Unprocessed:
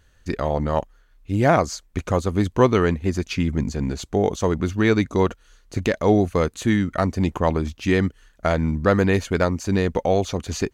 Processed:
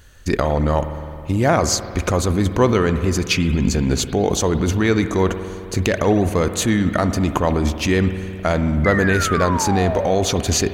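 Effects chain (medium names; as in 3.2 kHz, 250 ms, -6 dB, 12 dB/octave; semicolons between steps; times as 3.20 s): treble shelf 6.9 kHz +6.5 dB; in parallel at 0 dB: compressor with a negative ratio -26 dBFS, ratio -0.5; on the sum: painted sound fall, 8.84–10.11 s, 520–2100 Hz -24 dBFS; on a send at -9.5 dB: reverberation RT60 2.6 s, pre-delay 53 ms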